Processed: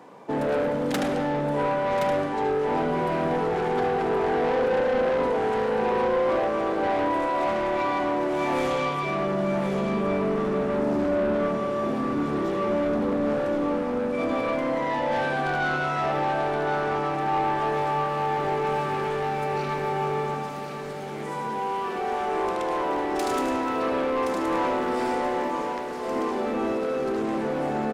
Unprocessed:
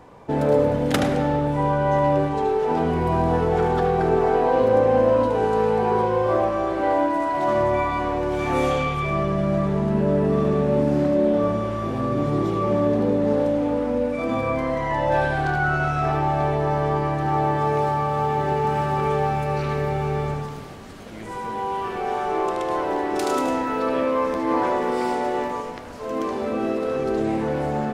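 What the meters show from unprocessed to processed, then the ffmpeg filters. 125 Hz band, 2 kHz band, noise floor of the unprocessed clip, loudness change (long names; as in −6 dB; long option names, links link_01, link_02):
−9.5 dB, −1.0 dB, −33 dBFS, −3.5 dB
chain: -af "highpass=frequency=170:width=0.5412,highpass=frequency=170:width=1.3066,asoftclip=type=tanh:threshold=-21dB,aecho=1:1:1071:0.422"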